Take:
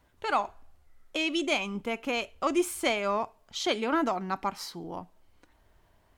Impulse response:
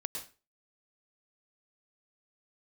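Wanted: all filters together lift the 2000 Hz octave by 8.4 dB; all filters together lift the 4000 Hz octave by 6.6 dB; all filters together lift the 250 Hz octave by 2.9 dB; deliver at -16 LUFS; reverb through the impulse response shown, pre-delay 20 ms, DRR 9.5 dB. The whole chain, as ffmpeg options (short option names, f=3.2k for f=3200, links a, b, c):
-filter_complex "[0:a]equalizer=f=250:t=o:g=4,equalizer=f=2k:t=o:g=9,equalizer=f=4k:t=o:g=5,asplit=2[a][b];[1:a]atrim=start_sample=2205,adelay=20[c];[b][c]afir=irnorm=-1:irlink=0,volume=-10dB[d];[a][d]amix=inputs=2:normalize=0,volume=8.5dB"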